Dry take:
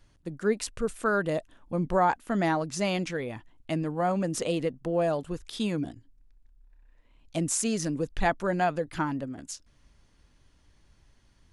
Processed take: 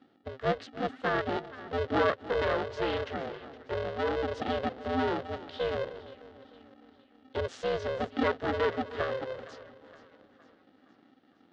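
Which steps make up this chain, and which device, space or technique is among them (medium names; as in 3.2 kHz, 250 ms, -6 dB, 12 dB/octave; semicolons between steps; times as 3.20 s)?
3.16–4.24 s: distance through air 430 m; two-band feedback delay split 890 Hz, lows 302 ms, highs 465 ms, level -15.5 dB; ring modulator pedal into a guitar cabinet (polarity switched at an audio rate 260 Hz; cabinet simulation 110–3600 Hz, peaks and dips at 140 Hz -6 dB, 200 Hz -4 dB, 500 Hz +4 dB, 970 Hz -7 dB, 2.4 kHz -9 dB); trim -1.5 dB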